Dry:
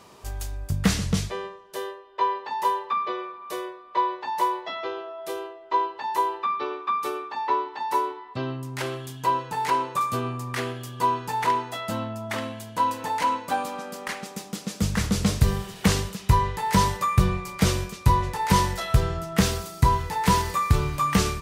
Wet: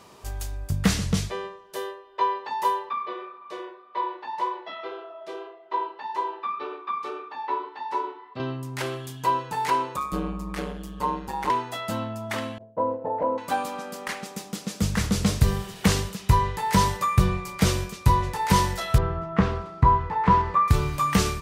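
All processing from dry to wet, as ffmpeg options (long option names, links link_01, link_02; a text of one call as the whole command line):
ffmpeg -i in.wav -filter_complex "[0:a]asettb=1/sr,asplit=3[link_01][link_02][link_03];[link_01]atrim=end=2.894[link_04];[link_02]atrim=start=2.89:end=8.4,asetpts=PTS-STARTPTS,afade=type=in:duration=0.004:curve=qsin,afade=type=out:start_time=5.506:duration=0.004:curve=qsin,flanger=delay=6.3:depth=6.6:regen=-55:speed=1.8:shape=triangular,highpass=150,lowpass=4400[link_05];[link_03]atrim=start=8.396[link_06];[link_04][link_05]acrossfade=duration=0.004:curve1=hsin:curve2=qsin[link_07];[link_07][link_06]acrossfade=duration=0.004:curve1=qsin:curve2=hsin,asettb=1/sr,asplit=3[link_08][link_09][link_10];[link_08]atrim=end=9.964[link_11];[link_09]atrim=start=9.96:end=11.5,asetpts=PTS-STARTPTS,afade=type=in:duration=0.004:curve=qsin,afade=type=out:start_time=1.536:duration=0.004:curve=qsin,tiltshelf=frequency=680:gain=4,aeval=exprs='val(0)*sin(2*PI*71*n/s)':channel_layout=same[link_12];[link_10]atrim=start=11.496[link_13];[link_11][link_12]acrossfade=duration=0.004:curve1=hsin:curve2=qsin[link_14];[link_14][link_13]acrossfade=duration=0.004:curve1=qsin:curve2=hsin,asettb=1/sr,asplit=3[link_15][link_16][link_17];[link_15]atrim=end=12.584[link_18];[link_16]atrim=start=12.58:end=13.38,asetpts=PTS-STARTPTS,afade=type=in:duration=0.004:curve=qsin,afade=type=out:start_time=0.796:duration=0.004:curve=qsin,agate=range=-33dB:threshold=-31dB:ratio=3:release=100:detection=peak,lowpass=frequency=580:width_type=q:width=4.6[link_19];[link_17]atrim=start=13.376[link_20];[link_18][link_19]acrossfade=duration=0.004:curve1=hsin:curve2=qsin[link_21];[link_21][link_20]acrossfade=duration=0.004:curve1=qsin:curve2=hsin,asettb=1/sr,asplit=3[link_22][link_23][link_24];[link_22]atrim=end=18.984[link_25];[link_23]atrim=start=18.98:end=20.68,asetpts=PTS-STARTPTS,afade=type=in:duration=0.004:curve=qsin,afade=type=out:start_time=1.696:duration=0.004:curve=qsin,lowpass=1800,equalizer=frequency=1100:width=3.5:gain=6.5[link_26];[link_24]atrim=start=20.676[link_27];[link_25][link_26]acrossfade=duration=0.004:curve1=hsin:curve2=qsin[link_28];[link_28][link_27]acrossfade=duration=0.004:curve1=qsin:curve2=hsin" out.wav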